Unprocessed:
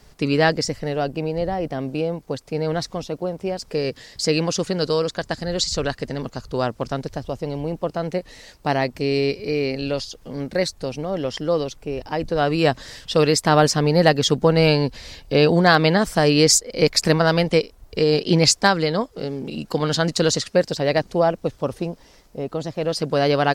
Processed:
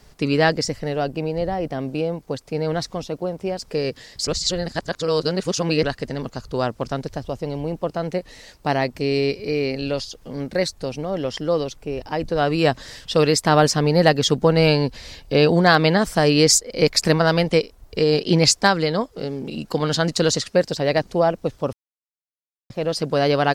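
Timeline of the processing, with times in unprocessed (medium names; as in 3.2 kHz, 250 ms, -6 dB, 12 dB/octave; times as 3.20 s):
4.27–5.83 s: reverse
21.73–22.70 s: mute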